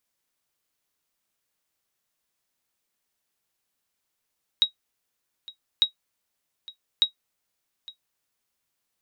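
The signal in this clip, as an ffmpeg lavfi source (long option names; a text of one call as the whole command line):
ffmpeg -f lavfi -i "aevalsrc='0.316*(sin(2*PI*3810*mod(t,1.2))*exp(-6.91*mod(t,1.2)/0.11)+0.0891*sin(2*PI*3810*max(mod(t,1.2)-0.86,0))*exp(-6.91*max(mod(t,1.2)-0.86,0)/0.11))':duration=3.6:sample_rate=44100" out.wav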